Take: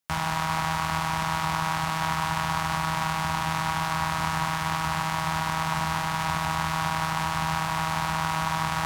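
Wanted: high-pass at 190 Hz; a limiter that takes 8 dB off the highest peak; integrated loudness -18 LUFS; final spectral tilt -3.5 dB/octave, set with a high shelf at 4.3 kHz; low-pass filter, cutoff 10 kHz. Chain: high-pass 190 Hz; low-pass 10 kHz; treble shelf 4.3 kHz -4.5 dB; trim +14.5 dB; peak limiter -5 dBFS

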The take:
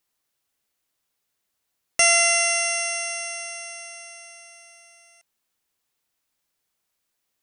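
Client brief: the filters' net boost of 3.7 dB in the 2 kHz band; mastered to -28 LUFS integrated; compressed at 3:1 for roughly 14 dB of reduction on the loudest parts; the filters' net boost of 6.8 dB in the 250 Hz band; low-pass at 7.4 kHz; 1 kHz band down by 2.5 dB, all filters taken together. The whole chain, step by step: low-pass 7.4 kHz; peaking EQ 250 Hz +9 dB; peaking EQ 1 kHz -9 dB; peaking EQ 2 kHz +6 dB; compression 3:1, threshold -33 dBFS; trim +4 dB

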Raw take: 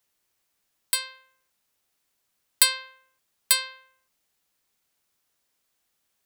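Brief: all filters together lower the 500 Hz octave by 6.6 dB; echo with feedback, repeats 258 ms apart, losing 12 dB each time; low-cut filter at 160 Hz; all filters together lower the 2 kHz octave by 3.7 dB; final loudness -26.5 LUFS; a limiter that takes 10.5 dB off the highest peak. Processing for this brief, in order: high-pass 160 Hz; peaking EQ 500 Hz -6.5 dB; peaking EQ 2 kHz -4.5 dB; peak limiter -12 dBFS; feedback delay 258 ms, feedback 25%, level -12 dB; trim +4.5 dB

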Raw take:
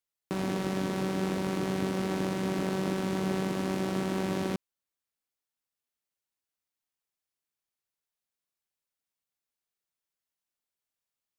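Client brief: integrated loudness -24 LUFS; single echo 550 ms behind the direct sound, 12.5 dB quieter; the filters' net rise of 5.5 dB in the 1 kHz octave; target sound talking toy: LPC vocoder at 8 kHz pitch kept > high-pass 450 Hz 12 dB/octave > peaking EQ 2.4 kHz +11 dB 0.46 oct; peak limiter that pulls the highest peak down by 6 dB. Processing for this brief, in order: peaking EQ 1 kHz +7 dB; peak limiter -20.5 dBFS; delay 550 ms -12.5 dB; LPC vocoder at 8 kHz pitch kept; high-pass 450 Hz 12 dB/octave; peaking EQ 2.4 kHz +11 dB 0.46 oct; trim +13.5 dB

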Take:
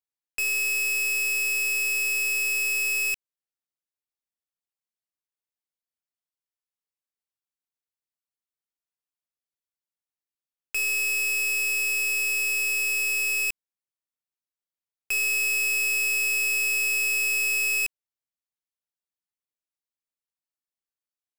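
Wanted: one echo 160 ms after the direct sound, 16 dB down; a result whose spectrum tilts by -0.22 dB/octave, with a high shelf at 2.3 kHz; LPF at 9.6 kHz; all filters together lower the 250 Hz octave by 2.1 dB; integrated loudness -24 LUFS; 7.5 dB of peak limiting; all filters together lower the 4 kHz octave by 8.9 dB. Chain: low-pass 9.6 kHz; peaking EQ 250 Hz -3.5 dB; treble shelf 2.3 kHz -6.5 dB; peaking EQ 4 kHz -5 dB; peak limiter -33 dBFS; delay 160 ms -16 dB; trim +11.5 dB

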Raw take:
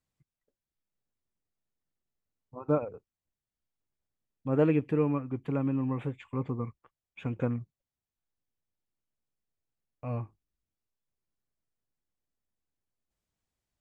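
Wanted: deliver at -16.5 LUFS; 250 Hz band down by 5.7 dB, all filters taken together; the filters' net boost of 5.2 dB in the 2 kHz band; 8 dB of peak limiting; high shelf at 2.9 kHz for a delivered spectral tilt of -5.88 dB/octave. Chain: peaking EQ 250 Hz -7.5 dB; peaking EQ 2 kHz +5 dB; treble shelf 2.9 kHz +5 dB; trim +20.5 dB; peak limiter -3 dBFS

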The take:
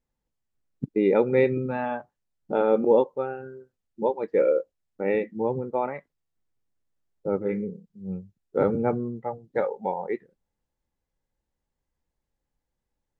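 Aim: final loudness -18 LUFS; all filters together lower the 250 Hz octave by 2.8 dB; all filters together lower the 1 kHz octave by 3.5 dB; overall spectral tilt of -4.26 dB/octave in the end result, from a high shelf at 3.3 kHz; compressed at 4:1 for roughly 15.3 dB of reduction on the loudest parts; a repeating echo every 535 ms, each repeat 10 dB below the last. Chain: peaking EQ 250 Hz -3.5 dB; peaking EQ 1 kHz -5 dB; treble shelf 3.3 kHz +8 dB; compression 4:1, threshold -36 dBFS; feedback delay 535 ms, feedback 32%, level -10 dB; trim +22 dB

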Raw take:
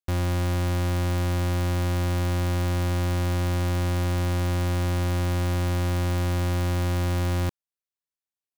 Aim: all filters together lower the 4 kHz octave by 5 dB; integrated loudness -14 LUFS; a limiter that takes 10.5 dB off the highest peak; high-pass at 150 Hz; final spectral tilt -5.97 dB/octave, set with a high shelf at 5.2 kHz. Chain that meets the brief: high-pass 150 Hz; peaking EQ 4 kHz -3.5 dB; treble shelf 5.2 kHz -7 dB; trim +27 dB; peak limiter -2.5 dBFS

